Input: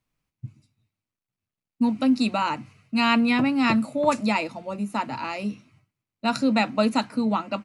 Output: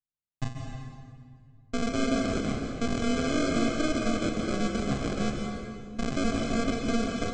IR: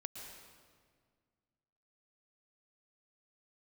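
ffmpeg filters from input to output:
-filter_complex "[0:a]aemphasis=mode=reproduction:type=bsi,agate=range=-33dB:threshold=-44dB:ratio=3:detection=peak,highpass=frequency=89:width=0.5412,highpass=frequency=89:width=1.3066,lowshelf=frequency=180:gain=8.5,bandreject=frequency=60:width_type=h:width=6,bandreject=frequency=120:width_type=h:width=6,bandreject=frequency=180:width_type=h:width=6,bandreject=frequency=240:width_type=h:width=6,asplit=2[link_01][link_02];[link_02]acompressor=threshold=-28dB:ratio=6,volume=-3dB[link_03];[link_01][link_03]amix=inputs=2:normalize=0,alimiter=limit=-15.5dB:level=0:latency=1:release=12,aeval=exprs='max(val(0),0)':channel_layout=same,aresample=16000,acrusher=samples=18:mix=1:aa=0.000001,aresample=44100[link_04];[1:a]atrim=start_sample=2205,asetrate=34839,aresample=44100[link_05];[link_04][link_05]afir=irnorm=-1:irlink=0,asetrate=45938,aresample=44100"

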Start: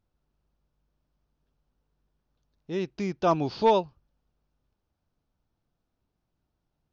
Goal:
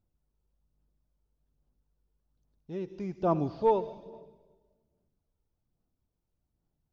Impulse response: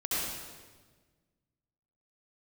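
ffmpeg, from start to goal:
-filter_complex "[0:a]equalizer=frequency=2200:width=0.44:gain=-8.5,asplit=2[link_01][link_02];[1:a]atrim=start_sample=2205,adelay=11[link_03];[link_02][link_03]afir=irnorm=-1:irlink=0,volume=-22dB[link_04];[link_01][link_04]amix=inputs=2:normalize=0,acrossover=split=2700[link_05][link_06];[link_06]acompressor=threshold=-59dB:ratio=4:attack=1:release=60[link_07];[link_05][link_07]amix=inputs=2:normalize=0,aphaser=in_gain=1:out_gain=1:delay=2.3:decay=0.37:speed=1.2:type=sinusoidal,volume=-4dB"

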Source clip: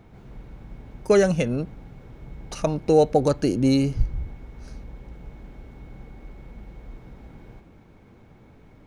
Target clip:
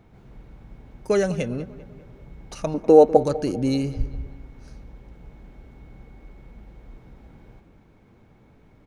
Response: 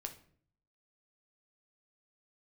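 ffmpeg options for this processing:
-filter_complex "[0:a]asettb=1/sr,asplit=3[link_01][link_02][link_03];[link_01]atrim=end=2.744[link_04];[link_02]atrim=start=2.74:end=3.17,asetpts=PTS-STARTPTS,afade=type=in:duration=0.004:curve=qsin,afade=type=out:start_time=0.426:duration=0.004:curve=qsin,equalizer=frequency=125:width_type=o:width=1:gain=-12,equalizer=frequency=250:width_type=o:width=1:gain=10,equalizer=frequency=500:width_type=o:width=1:gain=6,equalizer=frequency=1000:width_type=o:width=1:gain=8,equalizer=frequency=4000:width_type=o:width=1:gain=-4[link_05];[link_03]atrim=start=3.166[link_06];[link_04][link_05]acrossfade=duration=0.004:curve1=hsin:curve2=qsin[link_07];[link_07][link_06]acrossfade=duration=0.004:curve1=qsin:curve2=hsin,asplit=2[link_08][link_09];[link_09]adelay=197,lowpass=frequency=3100:poles=1,volume=-16.5dB,asplit=2[link_10][link_11];[link_11]adelay=197,lowpass=frequency=3100:poles=1,volume=0.52,asplit=2[link_12][link_13];[link_13]adelay=197,lowpass=frequency=3100:poles=1,volume=0.52,asplit=2[link_14][link_15];[link_15]adelay=197,lowpass=frequency=3100:poles=1,volume=0.52,asplit=2[link_16][link_17];[link_17]adelay=197,lowpass=frequency=3100:poles=1,volume=0.52[link_18];[link_10][link_12][link_14][link_16][link_18]amix=inputs=5:normalize=0[link_19];[link_08][link_19]amix=inputs=2:normalize=0,volume=-3.5dB"

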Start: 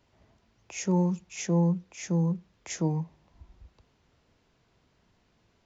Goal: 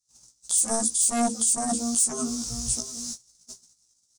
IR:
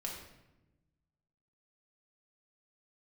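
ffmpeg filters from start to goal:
-filter_complex "[0:a]afftfilt=real='re':imag='-im':win_size=2048:overlap=0.75,bandreject=frequency=50:width_type=h:width=6,bandreject=frequency=100:width_type=h:width=6,bandreject=frequency=150:width_type=h:width=6,bandreject=frequency=200:width_type=h:width=6,bandreject=frequency=250:width_type=h:width=6,bandreject=frequency=300:width_type=h:width=6,bandreject=frequency=350:width_type=h:width=6,asetrate=59535,aresample=44100,equalizer=frequency=470:width=0.44:gain=-5.5,asplit=2[link_01][link_02];[link_02]adelay=698,lowpass=frequency=1900:poles=1,volume=-22dB,asplit=2[link_03][link_04];[link_04]adelay=698,lowpass=frequency=1900:poles=1,volume=0.3[link_05];[link_03][link_05]amix=inputs=2:normalize=0[link_06];[link_01][link_06]amix=inputs=2:normalize=0,aeval=exprs='0.112*(cos(1*acos(clip(val(0)/0.112,-1,1)))-cos(1*PI/2))+0.00178*(cos(3*acos(clip(val(0)/0.112,-1,1)))-cos(3*PI/2))+0.0501*(cos(7*acos(clip(val(0)/0.112,-1,1)))-cos(7*PI/2))':channel_layout=same,aexciter=amount=2.4:drive=7.3:freq=2700,acompressor=threshold=-34dB:ratio=2,agate=range=-38dB:threshold=-58dB:ratio=16:detection=peak,dynaudnorm=framelen=140:gausssize=7:maxgain=8.5dB,highshelf=frequency=4100:width_type=q:width=3:gain=12.5,alimiter=limit=-19.5dB:level=0:latency=1:release=293,volume=6.5dB"

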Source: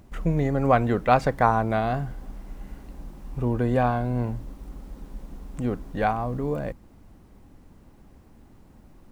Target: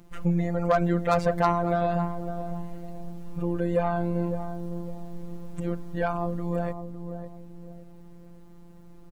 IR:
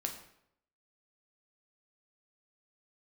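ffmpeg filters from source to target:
-filter_complex "[0:a]afftfilt=real='hypot(re,im)*cos(PI*b)':imag='0':win_size=1024:overlap=0.75,aeval=exprs='0.447*(cos(1*acos(clip(val(0)/0.447,-1,1)))-cos(1*PI/2))+0.0355*(cos(4*acos(clip(val(0)/0.447,-1,1)))-cos(4*PI/2))+0.0316*(cos(5*acos(clip(val(0)/0.447,-1,1)))-cos(5*PI/2))':channel_layout=same,asplit=2[link_01][link_02];[link_02]adelay=557,lowpass=frequency=810:poles=1,volume=-8dB,asplit=2[link_03][link_04];[link_04]adelay=557,lowpass=frequency=810:poles=1,volume=0.35,asplit=2[link_05][link_06];[link_06]adelay=557,lowpass=frequency=810:poles=1,volume=0.35,asplit=2[link_07][link_08];[link_08]adelay=557,lowpass=frequency=810:poles=1,volume=0.35[link_09];[link_01][link_03][link_05][link_07][link_09]amix=inputs=5:normalize=0"

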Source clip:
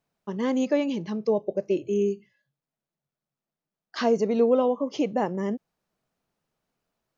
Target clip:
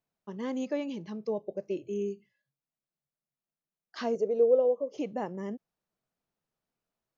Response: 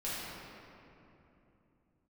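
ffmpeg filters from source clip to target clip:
-filter_complex "[0:a]asettb=1/sr,asplit=3[link_01][link_02][link_03];[link_01]atrim=end=4.154[link_04];[link_02]atrim=start=4.15:end=4.98,asetpts=PTS-STARTPTS,afade=type=in:duration=0.004:curve=qsin,afade=type=out:start_time=0.826:duration=0.004:curve=qsin,equalizer=frequency=125:width_type=o:width=1:gain=-3,equalizer=frequency=250:width_type=o:width=1:gain=-9,equalizer=frequency=500:width_type=o:width=1:gain=12,equalizer=frequency=1000:width_type=o:width=1:gain=-10,equalizer=frequency=2000:width_type=o:width=1:gain=-7,equalizer=frequency=4000:width_type=o:width=1:gain=-11[link_05];[link_03]atrim=start=4.976[link_06];[link_04][link_05]acrossfade=duration=0.004:curve1=hsin:curve2=qsin[link_07];[link_07][link_06]acrossfade=duration=0.004:curve1=qsin:curve2=hsin,volume=-8.5dB"

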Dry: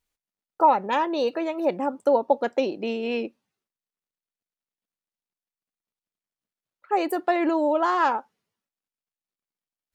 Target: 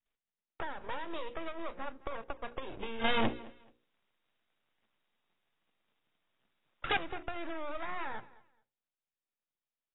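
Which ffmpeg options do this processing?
ffmpeg -i in.wav -filter_complex "[0:a]adynamicequalizer=threshold=0.0282:dfrequency=620:dqfactor=1.9:tfrequency=620:tqfactor=1.9:attack=5:release=100:ratio=0.375:range=2.5:mode=boostabove:tftype=bell,acompressor=threshold=-25dB:ratio=8,aeval=exprs='max(val(0),0)':channel_layout=same,equalizer=frequency=77:width=4.7:gain=-9,bandreject=frequency=60:width_type=h:width=6,bandreject=frequency=120:width_type=h:width=6,bandreject=frequency=180:width_type=h:width=6,bandreject=frequency=240:width_type=h:width=6,bandreject=frequency=300:width_type=h:width=6,bandreject=frequency=360:width_type=h:width=6,bandreject=frequency=420:width_type=h:width=6,bandreject=frequency=480:width_type=h:width=6,bandreject=frequency=540:width_type=h:width=6,acrossover=split=200|1300[link_01][link_02][link_03];[link_01]acompressor=threshold=-39dB:ratio=4[link_04];[link_02]acompressor=threshold=-43dB:ratio=4[link_05];[link_03]acompressor=threshold=-43dB:ratio=4[link_06];[link_04][link_05][link_06]amix=inputs=3:normalize=0,asettb=1/sr,asplit=3[link_07][link_08][link_09];[link_07]atrim=end=3.044[link_10];[link_08]atrim=start=3.04:end=6.97,asetpts=PTS-STARTPTS,afade=type=in:duration=0.004:curve=qsin,afade=type=out:start_time=3.926:duration=0.004:curve=qsin,aeval=exprs='0.0596*sin(PI/2*5.62*val(0)/0.0596)':channel_layout=same[link_11];[link_09]atrim=start=6.966[link_12];[link_10][link_11]acrossfade=duration=0.004:curve1=hsin:curve2=qsin[link_13];[link_13][link_12]acrossfade=duration=0.004:curve1=qsin:curve2=hsin,aecho=1:1:215|430:0.0891|0.0205" -ar 16000 -c:a aac -b:a 16k out.aac

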